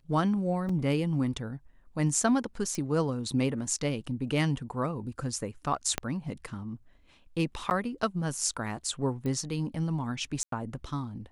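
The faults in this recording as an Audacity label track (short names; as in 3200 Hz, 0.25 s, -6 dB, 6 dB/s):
0.690000	0.690000	gap 4 ms
2.750000	2.750000	pop
5.980000	5.980000	pop -12 dBFS
7.700000	7.710000	gap 9.7 ms
9.260000	9.260000	pop -23 dBFS
10.430000	10.520000	gap 93 ms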